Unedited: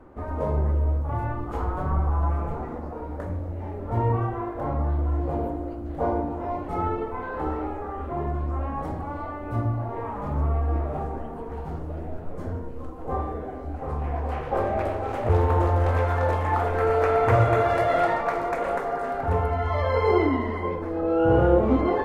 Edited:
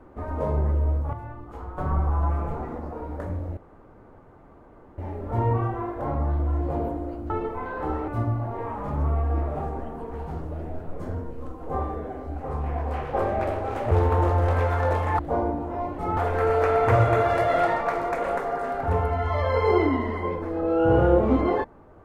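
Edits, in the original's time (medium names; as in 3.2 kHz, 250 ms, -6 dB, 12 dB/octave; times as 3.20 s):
1.13–1.78 s: gain -9.5 dB
3.57 s: insert room tone 1.41 s
5.89–6.87 s: move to 16.57 s
7.65–9.46 s: delete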